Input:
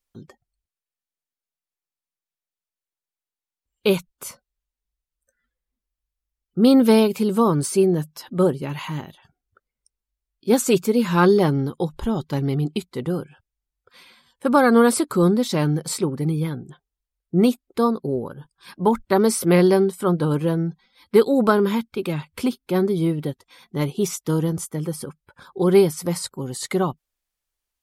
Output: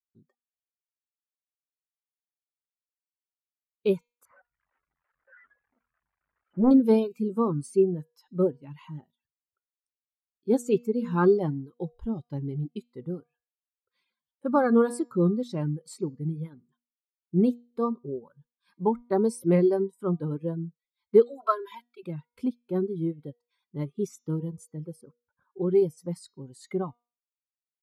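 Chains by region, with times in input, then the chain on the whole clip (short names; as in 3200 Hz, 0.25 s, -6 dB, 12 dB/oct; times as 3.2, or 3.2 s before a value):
4.25–6.71 switching spikes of -12 dBFS + LPF 1600 Hz 24 dB/oct + Doppler distortion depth 0.79 ms
21.25–22.03 HPF 740 Hz + comb 3 ms, depth 90%
25.01–25.82 low-pass opened by the level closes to 1800 Hz, open at -10.5 dBFS + compressor 1.5:1, threshold -17 dBFS
whole clip: reverb removal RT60 0.68 s; de-hum 239.6 Hz, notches 30; spectral expander 1.5:1; gain -4 dB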